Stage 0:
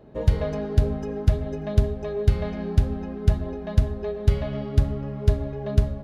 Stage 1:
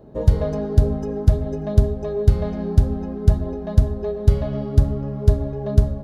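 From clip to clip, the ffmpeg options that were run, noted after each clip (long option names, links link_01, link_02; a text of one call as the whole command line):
ffmpeg -i in.wav -af "equalizer=frequency=2400:width_type=o:width=1.5:gain=-10.5,volume=4.5dB" out.wav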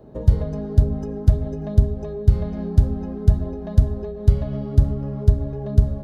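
ffmpeg -i in.wav -filter_complex "[0:a]acrossover=split=250[link_01][link_02];[link_02]acompressor=threshold=-32dB:ratio=6[link_03];[link_01][link_03]amix=inputs=2:normalize=0" out.wav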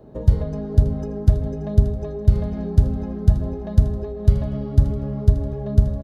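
ffmpeg -i in.wav -af "aecho=1:1:580|1160|1740|2320:0.251|0.111|0.0486|0.0214" out.wav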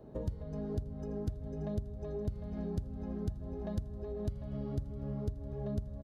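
ffmpeg -i in.wav -af "acompressor=threshold=-26dB:ratio=10,volume=-7dB" out.wav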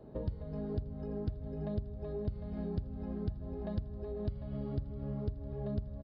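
ffmpeg -i in.wav -af "aresample=11025,aresample=44100" out.wav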